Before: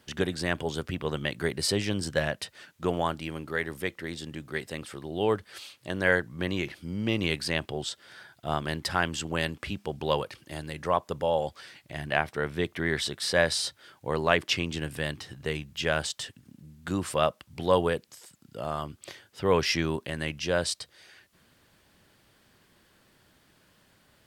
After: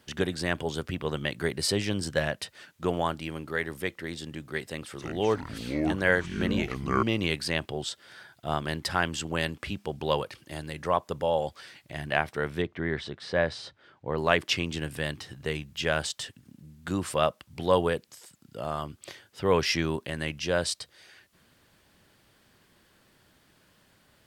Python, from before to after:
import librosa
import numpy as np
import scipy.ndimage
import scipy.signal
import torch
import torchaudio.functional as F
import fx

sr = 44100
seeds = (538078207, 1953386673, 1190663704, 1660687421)

y = fx.echo_pitch(x, sr, ms=291, semitones=-6, count=2, db_per_echo=-3.0, at=(4.64, 7.03))
y = fx.spacing_loss(y, sr, db_at_10k=25, at=(12.62, 14.18))